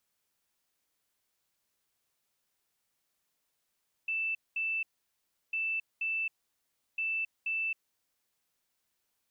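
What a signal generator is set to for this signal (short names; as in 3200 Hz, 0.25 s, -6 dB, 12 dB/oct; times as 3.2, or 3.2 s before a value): beep pattern sine 2650 Hz, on 0.27 s, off 0.21 s, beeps 2, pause 0.70 s, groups 3, -29.5 dBFS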